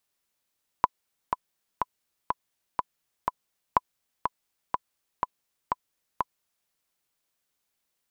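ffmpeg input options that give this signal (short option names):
-f lavfi -i "aevalsrc='pow(10,(-5.5-6*gte(mod(t,6*60/123),60/123))/20)*sin(2*PI*1000*mod(t,60/123))*exp(-6.91*mod(t,60/123)/0.03)':d=5.85:s=44100"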